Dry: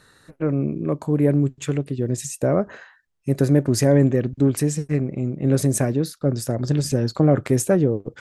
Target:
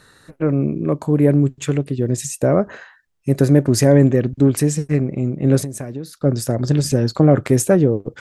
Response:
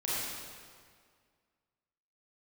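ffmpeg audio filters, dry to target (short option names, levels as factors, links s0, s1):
-filter_complex "[0:a]asettb=1/sr,asplit=3[s0][s1][s2];[s0]atrim=end=5.584[s3];[s1]atrim=start=5.58:end=6.13,asetpts=PTS-STARTPTS,afade=t=in:d=0.004:c=qsin,afade=t=out:st=0.546:d=0.004:c=qsin,acompressor=threshold=0.0398:ratio=12[s4];[s2]atrim=start=6.126[s5];[s3][s4]acrossfade=d=0.004:c1=hsin:c2=qsin[s6];[s6][s5]acrossfade=d=0.004:c1=qsin:c2=hsin,volume=1.58"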